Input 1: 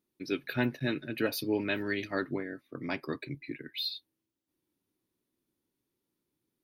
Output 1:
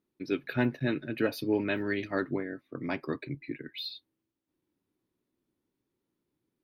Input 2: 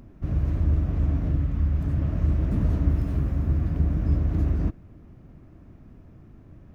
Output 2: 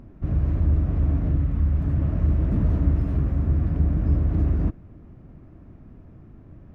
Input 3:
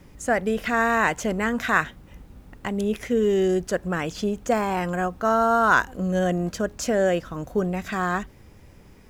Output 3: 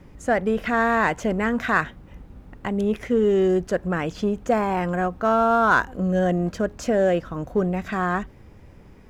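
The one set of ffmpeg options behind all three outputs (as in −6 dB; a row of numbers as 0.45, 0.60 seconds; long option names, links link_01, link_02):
-filter_complex "[0:a]highshelf=frequency=3600:gain=-11.5,asplit=2[link_01][link_02];[link_02]asoftclip=type=hard:threshold=-20dB,volume=-10dB[link_03];[link_01][link_03]amix=inputs=2:normalize=0"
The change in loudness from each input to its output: +1.5, +2.0, +1.0 LU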